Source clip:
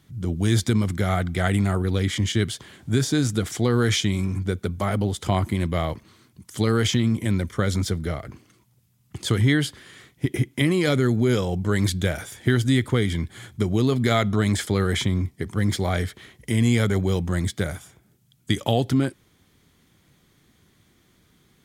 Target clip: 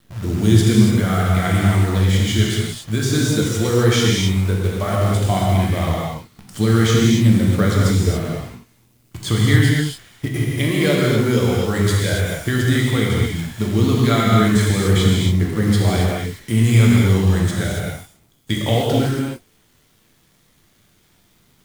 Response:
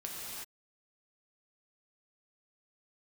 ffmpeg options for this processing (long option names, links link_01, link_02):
-filter_complex "[0:a]aphaser=in_gain=1:out_gain=1:delay=2.3:decay=0.28:speed=0.13:type=triangular,acrusher=bits=7:dc=4:mix=0:aa=0.000001[link_01];[1:a]atrim=start_sample=2205,afade=type=out:start_time=0.34:duration=0.01,atrim=end_sample=15435[link_02];[link_01][link_02]afir=irnorm=-1:irlink=0,volume=4.5dB"